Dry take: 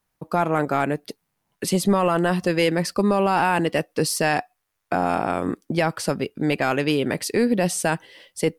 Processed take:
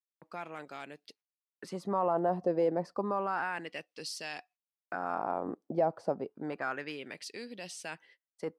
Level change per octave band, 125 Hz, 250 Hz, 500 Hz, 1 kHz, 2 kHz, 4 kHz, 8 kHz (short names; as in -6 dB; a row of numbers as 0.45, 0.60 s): -18.5, -16.5, -11.0, -11.5, -14.0, -15.5, -19.5 dB